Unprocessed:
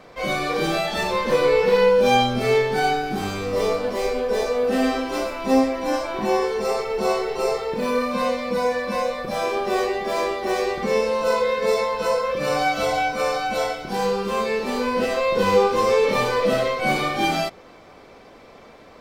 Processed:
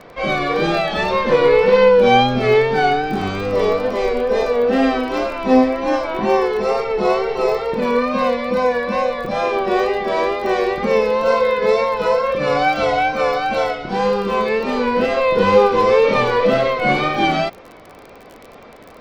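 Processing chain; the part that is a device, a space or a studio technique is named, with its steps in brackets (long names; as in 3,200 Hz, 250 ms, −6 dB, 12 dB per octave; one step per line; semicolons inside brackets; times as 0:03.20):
lo-fi chain (low-pass filter 3,700 Hz 12 dB per octave; tape wow and flutter; surface crackle 28 per second −33 dBFS)
level +5 dB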